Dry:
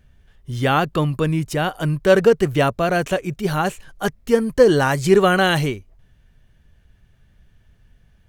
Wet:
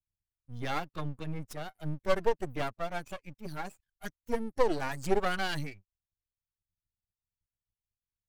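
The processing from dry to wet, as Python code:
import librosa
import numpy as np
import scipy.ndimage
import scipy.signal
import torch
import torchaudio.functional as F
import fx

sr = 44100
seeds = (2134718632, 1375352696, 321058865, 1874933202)

y = fx.bin_expand(x, sr, power=2.0)
y = scipy.signal.sosfilt(scipy.signal.butter(2, 73.0, 'highpass', fs=sr, output='sos'), y)
y = np.maximum(y, 0.0)
y = y * 10.0 ** (-7.0 / 20.0)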